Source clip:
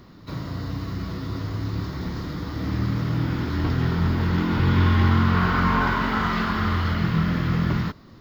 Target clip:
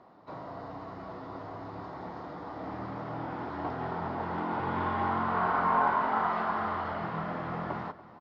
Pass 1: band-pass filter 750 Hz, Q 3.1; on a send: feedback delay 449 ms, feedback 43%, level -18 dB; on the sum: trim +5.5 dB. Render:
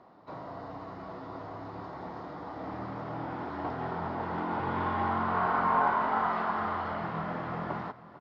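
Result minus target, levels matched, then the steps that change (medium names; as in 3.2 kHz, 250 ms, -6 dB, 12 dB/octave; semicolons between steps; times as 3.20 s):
echo 163 ms late
change: feedback delay 286 ms, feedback 43%, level -18 dB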